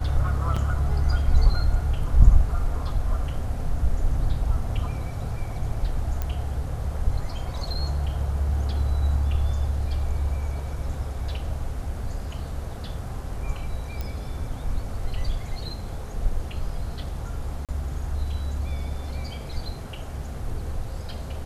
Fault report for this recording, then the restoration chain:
0.56–0.57 gap 5.2 ms
6.22 pop -15 dBFS
14.01 pop -17 dBFS
17.65–17.69 gap 37 ms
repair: de-click; interpolate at 0.56, 5.2 ms; interpolate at 17.65, 37 ms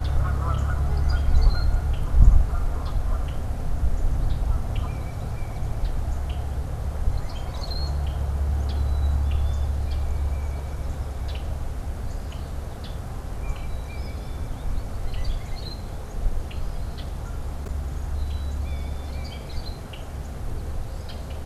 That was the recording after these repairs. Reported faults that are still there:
none

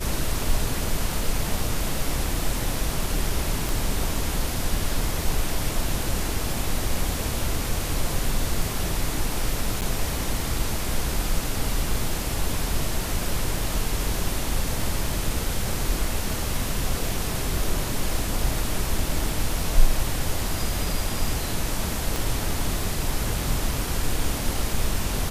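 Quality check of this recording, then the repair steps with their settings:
3.69 pop
9.81–9.82 gap 9 ms
22.16 pop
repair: de-click; interpolate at 9.81, 9 ms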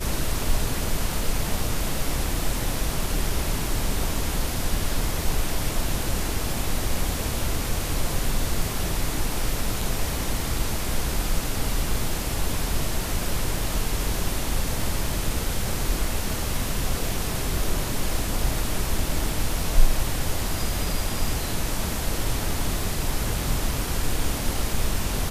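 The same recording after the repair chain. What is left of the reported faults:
22.16 pop

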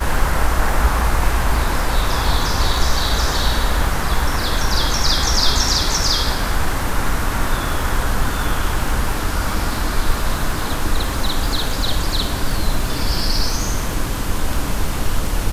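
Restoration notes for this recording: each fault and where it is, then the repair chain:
crackle 44/s -24 dBFS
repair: de-click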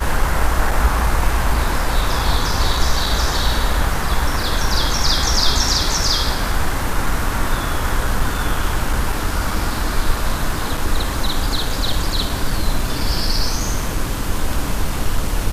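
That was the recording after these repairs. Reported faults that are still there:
none

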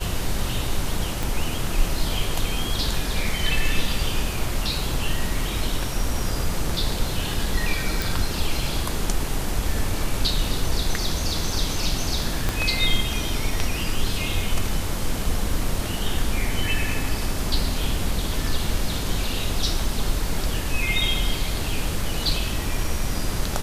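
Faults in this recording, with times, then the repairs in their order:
1.23 pop
8.02 pop
12.49 pop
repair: de-click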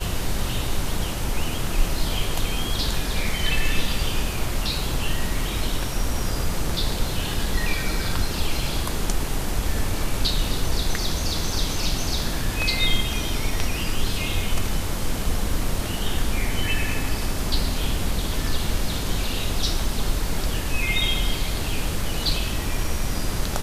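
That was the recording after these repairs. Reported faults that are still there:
1.23 pop
12.49 pop

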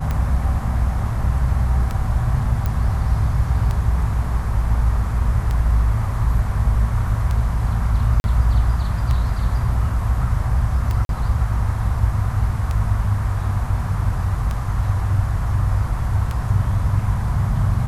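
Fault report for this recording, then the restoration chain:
tick 33 1/3 rpm -12 dBFS
2.66 pop -11 dBFS
8.2–8.24 gap 41 ms
11.05–11.09 gap 42 ms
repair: de-click; interpolate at 8.2, 41 ms; interpolate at 11.05, 42 ms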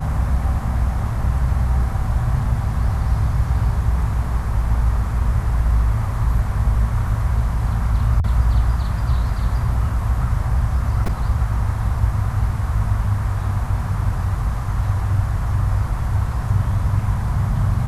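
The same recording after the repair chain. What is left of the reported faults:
none

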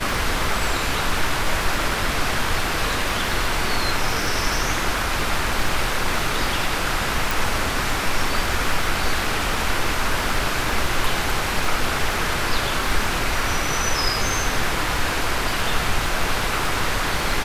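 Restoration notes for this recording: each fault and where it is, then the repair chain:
crackle 33/s -25 dBFS
7.31 pop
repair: de-click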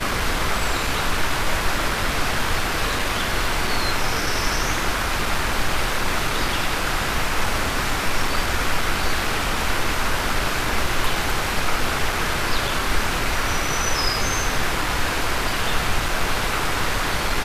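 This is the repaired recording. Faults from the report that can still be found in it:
none

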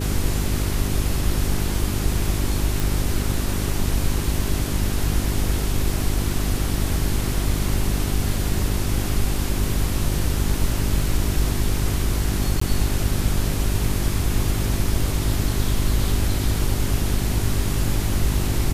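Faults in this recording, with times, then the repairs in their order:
hum 50 Hz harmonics 8 -25 dBFS
2.8 pop
12.6–12.61 gap 14 ms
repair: de-click; de-hum 50 Hz, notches 8; interpolate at 12.6, 14 ms

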